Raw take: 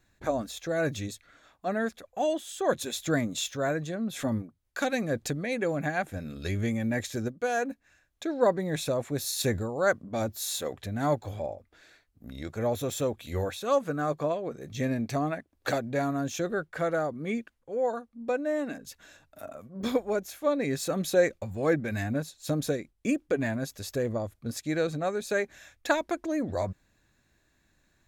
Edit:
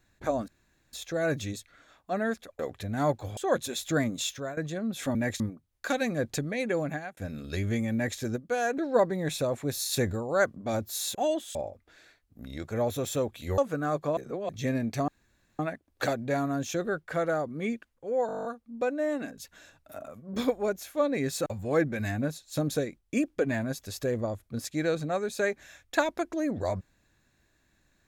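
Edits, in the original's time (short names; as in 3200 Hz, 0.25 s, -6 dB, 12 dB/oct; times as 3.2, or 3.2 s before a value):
0.48 insert room tone 0.45 s
2.14–2.54 swap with 10.62–11.4
3.48–3.74 fade out, to -18 dB
5.74–6.09 fade out
6.85–7.1 copy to 4.32
7.7–8.25 cut
13.43–13.74 cut
14.33–14.65 reverse
15.24 insert room tone 0.51 s
17.92 stutter 0.02 s, 10 plays
20.93–21.38 cut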